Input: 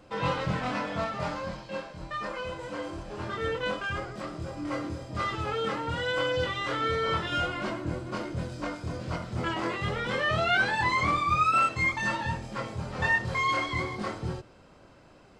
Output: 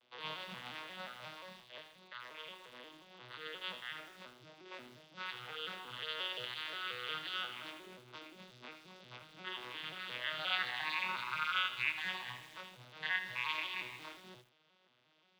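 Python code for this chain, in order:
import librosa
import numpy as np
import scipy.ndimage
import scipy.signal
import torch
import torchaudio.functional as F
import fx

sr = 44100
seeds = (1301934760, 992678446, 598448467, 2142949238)

y = fx.vocoder_arp(x, sr, chord='major triad', root=47, every_ms=177)
y = fx.bandpass_q(y, sr, hz=3400.0, q=2.9)
y = fx.echo_crushed(y, sr, ms=80, feedback_pct=80, bits=10, wet_db=-12.0)
y = y * 10.0 ** (6.5 / 20.0)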